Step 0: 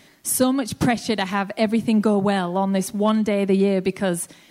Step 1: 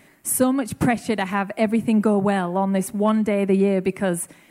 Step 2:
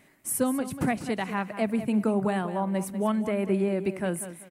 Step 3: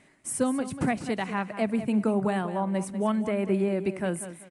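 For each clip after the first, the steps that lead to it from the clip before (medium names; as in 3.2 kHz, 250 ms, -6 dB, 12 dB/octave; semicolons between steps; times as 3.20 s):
high-order bell 4.5 kHz -9.5 dB 1.2 oct
feedback delay 193 ms, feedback 28%, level -12 dB; trim -7 dB
resampled via 22.05 kHz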